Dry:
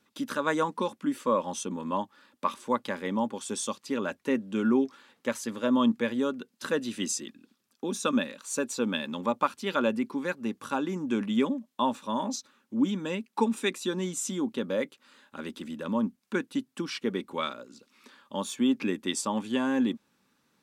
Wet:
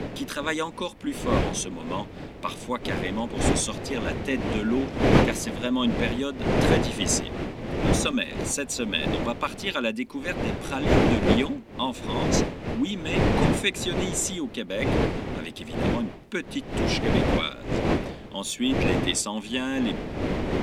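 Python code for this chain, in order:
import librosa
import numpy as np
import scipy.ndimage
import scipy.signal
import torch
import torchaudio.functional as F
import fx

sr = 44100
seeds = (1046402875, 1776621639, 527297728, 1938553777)

y = fx.dmg_wind(x, sr, seeds[0], corner_hz=450.0, level_db=-26.0)
y = fx.high_shelf_res(y, sr, hz=1700.0, db=7.0, q=1.5)
y = y * 10.0 ** (-1.0 / 20.0)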